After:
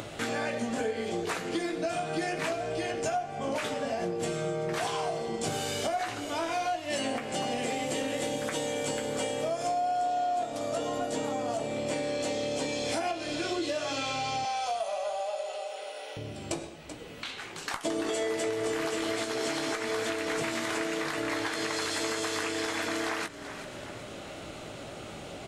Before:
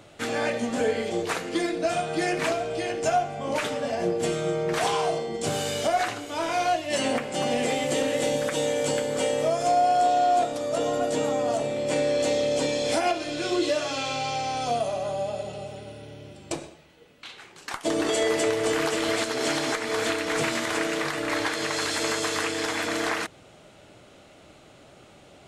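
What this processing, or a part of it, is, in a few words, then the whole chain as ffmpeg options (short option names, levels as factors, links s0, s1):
upward and downward compression: -filter_complex "[0:a]asplit=2[s0][s1];[s1]adelay=18,volume=0.376[s2];[s0][s2]amix=inputs=2:normalize=0,asettb=1/sr,asplit=3[s3][s4][s5];[s3]atrim=end=14.454[s6];[s4]atrim=start=14.45:end=16.17,asetpts=PTS-STARTPTS,afade=t=in:d=0.004:c=qsin,afade=t=out:st=1.716:d=0.004:c=qsin,highpass=f=560:w=0.5412,highpass=f=560:w=1.3066[s7];[s5]atrim=start=16.166[s8];[s6][s7]acrossfade=d=0.004:c1=hsin:c2=qsin[s9];[s9][s8]acrossfade=d=0.004:c1=qsin:c2=hsin,asplit=4[s10][s11][s12][s13];[s11]adelay=383,afreqshift=-37,volume=0.1[s14];[s12]adelay=766,afreqshift=-74,volume=0.0389[s15];[s13]adelay=1149,afreqshift=-111,volume=0.0151[s16];[s10][s14][s15][s16]amix=inputs=4:normalize=0,acompressor=mode=upward:threshold=0.0251:ratio=2.5,acompressor=threshold=0.0355:ratio=4"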